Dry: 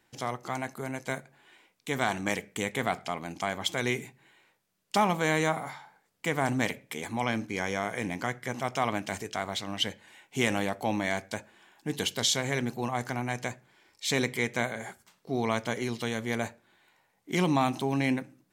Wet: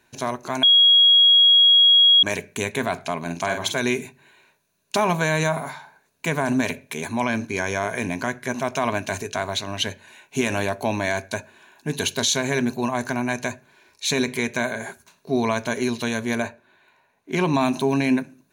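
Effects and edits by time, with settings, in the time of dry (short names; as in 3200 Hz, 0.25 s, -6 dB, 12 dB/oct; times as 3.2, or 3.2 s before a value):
0.63–2.23 bleep 3300 Hz -7.5 dBFS
3.18–3.79 doubler 47 ms -6 dB
16.42–17.54 tone controls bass -4 dB, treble -9 dB
whole clip: ripple EQ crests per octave 1.5, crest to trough 9 dB; limiter -16.5 dBFS; gain +6 dB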